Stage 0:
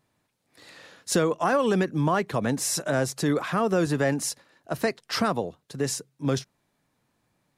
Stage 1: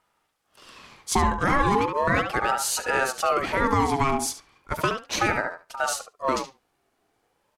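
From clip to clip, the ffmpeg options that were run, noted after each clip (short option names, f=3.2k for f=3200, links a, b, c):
-filter_complex "[0:a]asplit=2[a][b];[b]adelay=71,lowpass=f=2.8k:p=1,volume=-6dB,asplit=2[c][d];[d]adelay=71,lowpass=f=2.8k:p=1,volume=0.16,asplit=2[e][f];[f]adelay=71,lowpass=f=2.8k:p=1,volume=0.16[g];[a][c][e][g]amix=inputs=4:normalize=0,aeval=exprs='val(0)*sin(2*PI*820*n/s+820*0.35/0.36*sin(2*PI*0.36*n/s))':c=same,volume=3.5dB"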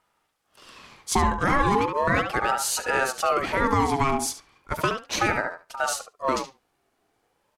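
-af anull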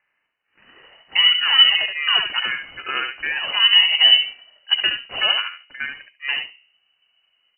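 -af "bandreject=f=67.53:t=h:w=4,bandreject=f=135.06:t=h:w=4,bandreject=f=202.59:t=h:w=4,bandreject=f=270.12:t=h:w=4,bandreject=f=337.65:t=h:w=4,bandreject=f=405.18:t=h:w=4,bandreject=f=472.71:t=h:w=4,bandreject=f=540.24:t=h:w=4,bandreject=f=607.77:t=h:w=4,bandreject=f=675.3:t=h:w=4,bandreject=f=742.83:t=h:w=4,bandreject=f=810.36:t=h:w=4,bandreject=f=877.89:t=h:w=4,bandreject=f=945.42:t=h:w=4,bandreject=f=1.01295k:t=h:w=4,bandreject=f=1.08048k:t=h:w=4,asubboost=boost=9.5:cutoff=160,lowpass=f=2.6k:t=q:w=0.5098,lowpass=f=2.6k:t=q:w=0.6013,lowpass=f=2.6k:t=q:w=0.9,lowpass=f=2.6k:t=q:w=2.563,afreqshift=-3000"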